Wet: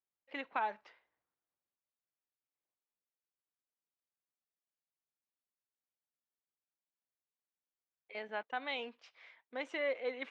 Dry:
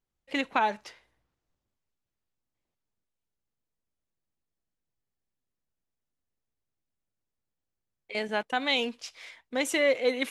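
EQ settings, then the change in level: band-pass filter 1.2 kHz, Q 0.54; distance through air 140 m; -8.0 dB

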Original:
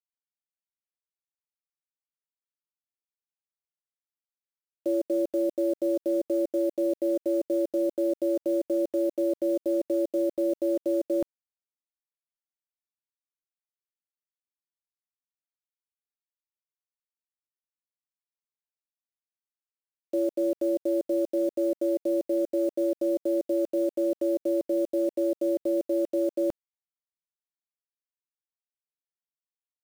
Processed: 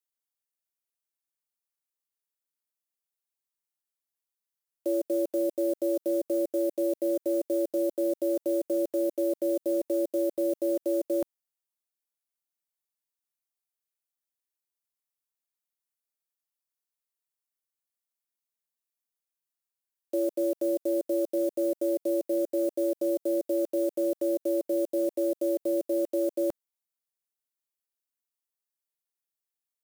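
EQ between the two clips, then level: tone controls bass -8 dB, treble +15 dB; peaking EQ 6.2 kHz -8.5 dB 2 oct; treble shelf 12 kHz -7.5 dB; 0.0 dB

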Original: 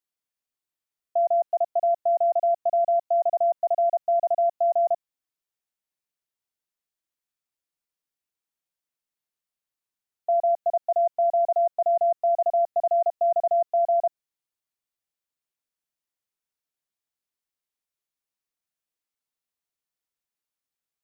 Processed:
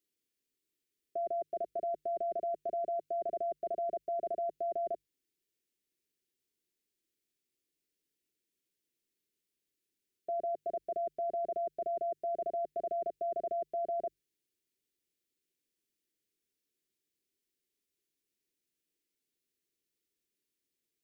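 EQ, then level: Butterworth band-stop 890 Hz, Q 0.61; peaking EQ 370 Hz +12 dB 1.2 oct; hum notches 50/100/150 Hz; +2.5 dB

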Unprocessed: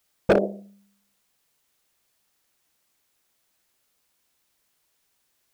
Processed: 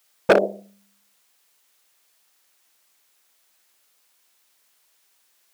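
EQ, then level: high-pass 650 Hz 6 dB/octave; +7.5 dB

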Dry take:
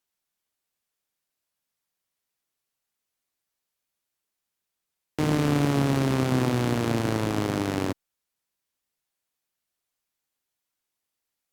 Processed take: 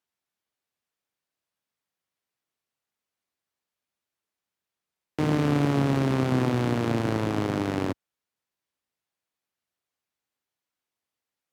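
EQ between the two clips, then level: high-pass 61 Hz; treble shelf 5.1 kHz -9.5 dB; 0.0 dB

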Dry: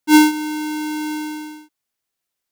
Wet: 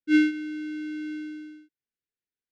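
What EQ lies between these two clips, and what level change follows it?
dynamic bell 2.2 kHz, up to +6 dB, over -32 dBFS, Q 1.1; brick-wall FIR band-stop 520–1400 Hz; tape spacing loss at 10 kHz 28 dB; -7.5 dB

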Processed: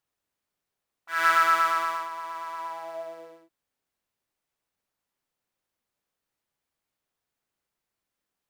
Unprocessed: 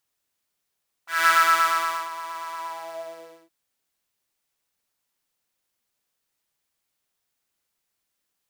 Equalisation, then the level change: treble shelf 2.4 kHz -9.5 dB; 0.0 dB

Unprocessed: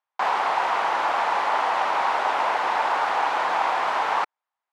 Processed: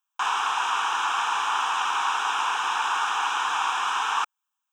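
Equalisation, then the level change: tilt EQ +4 dB/octave; static phaser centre 3 kHz, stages 8; 0.0 dB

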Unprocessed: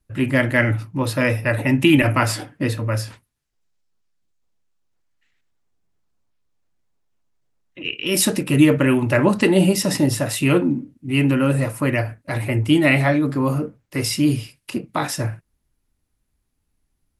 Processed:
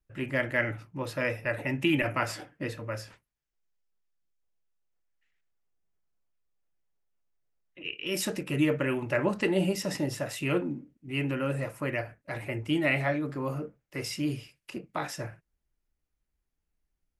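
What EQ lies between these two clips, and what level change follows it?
fifteen-band graphic EQ 100 Hz -11 dB, 250 Hz -7 dB, 1 kHz -3 dB, 4 kHz -5 dB, 10 kHz -10 dB; -8.0 dB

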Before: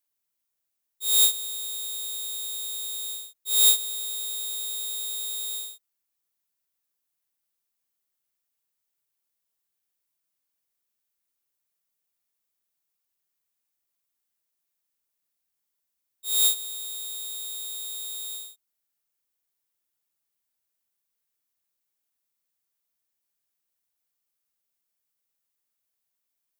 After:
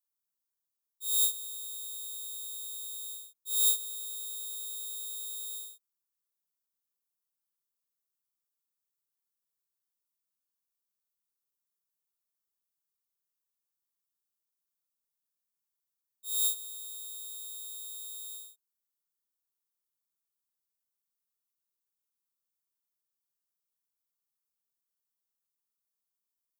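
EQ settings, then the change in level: peaking EQ 650 Hz -6.5 dB 0.55 oct; static phaser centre 430 Hz, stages 8; -6.5 dB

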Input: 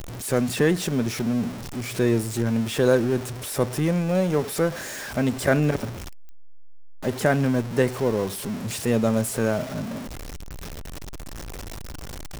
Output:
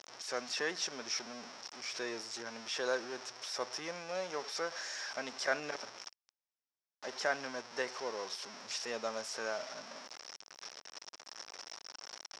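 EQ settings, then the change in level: high-pass 890 Hz 12 dB/octave; resonant low-pass 5.5 kHz, resonance Q 6.9; treble shelf 2.7 kHz -11.5 dB; -5.0 dB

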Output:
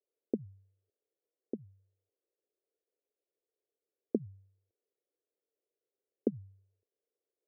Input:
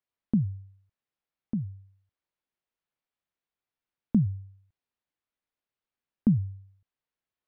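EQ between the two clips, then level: ladder band-pass 490 Hz, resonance 60%; tilt EQ -3 dB/octave; static phaser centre 420 Hz, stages 4; +13.0 dB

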